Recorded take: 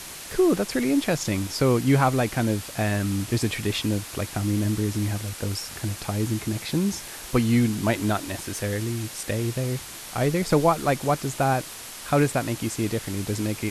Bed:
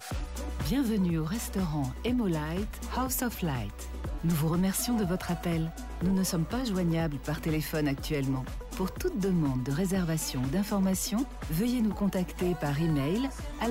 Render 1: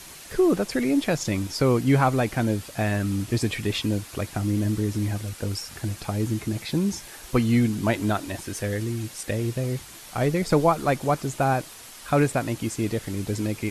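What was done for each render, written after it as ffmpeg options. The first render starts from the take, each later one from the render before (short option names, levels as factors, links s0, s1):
-af "afftdn=nr=6:nf=-39"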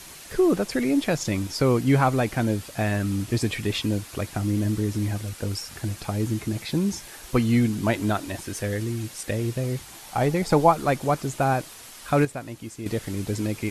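-filter_complex "[0:a]asettb=1/sr,asplit=3[s0][s1][s2];[s0]atrim=end=9.874[s3];[s1]atrim=start=9.87:end=10.71,asetpts=PTS-STARTPTS,afade=t=in:d=0.004:c=qsin,afade=t=out:st=0.836:d=0.004:c=qsin,equalizer=f=820:t=o:w=0.3:g=9.5[s4];[s2]atrim=start=10.706[s5];[s3][s4]acrossfade=d=0.004:c1=hsin:c2=qsin[s6];[s6][s5]acrossfade=d=0.004:c1=qsin:c2=hsin,asplit=3[s7][s8][s9];[s7]atrim=end=12.252[s10];[s8]atrim=start=12.248:end=12.862,asetpts=PTS-STARTPTS,volume=0.355[s11];[s9]atrim=start=12.858[s12];[s10][s11]acrossfade=d=0.004:c1=hsin:c2=hsin[s13];[s13][s12]acrossfade=d=0.004:c1=hsin:c2=hsin"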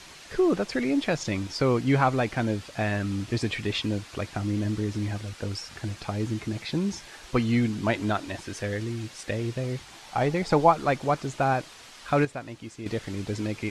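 -af "lowpass=5500,lowshelf=f=490:g=-4"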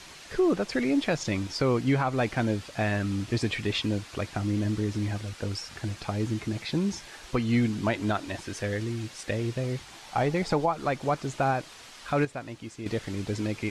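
-af "alimiter=limit=0.168:level=0:latency=1:release=208"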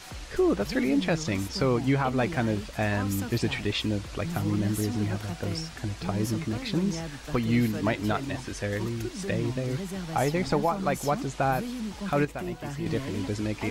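-filter_complex "[1:a]volume=0.473[s0];[0:a][s0]amix=inputs=2:normalize=0"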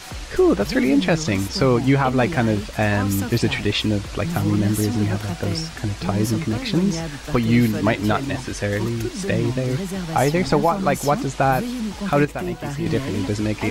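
-af "volume=2.37"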